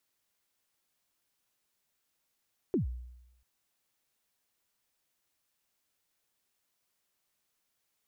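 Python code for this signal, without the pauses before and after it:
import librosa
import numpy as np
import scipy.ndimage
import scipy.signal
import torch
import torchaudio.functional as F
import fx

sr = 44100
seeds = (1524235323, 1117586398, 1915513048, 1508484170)

y = fx.drum_kick(sr, seeds[0], length_s=0.69, level_db=-23.5, start_hz=420.0, end_hz=61.0, sweep_ms=123.0, decay_s=0.92, click=False)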